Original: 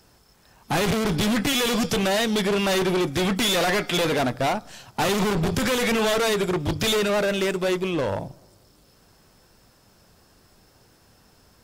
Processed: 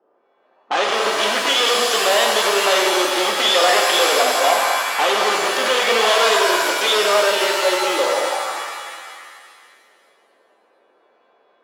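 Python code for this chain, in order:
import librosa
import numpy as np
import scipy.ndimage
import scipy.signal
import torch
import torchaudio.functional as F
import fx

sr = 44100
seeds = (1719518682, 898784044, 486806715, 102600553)

y = fx.env_lowpass(x, sr, base_hz=510.0, full_db=-25.0)
y = fx.cabinet(y, sr, low_hz=360.0, low_slope=24, high_hz=7000.0, hz=(540.0, 770.0, 1200.0, 1900.0, 3100.0), db=(5, 4, 9, 3, 8))
y = fx.rev_shimmer(y, sr, seeds[0], rt60_s=2.0, semitones=7, shimmer_db=-2, drr_db=1.5)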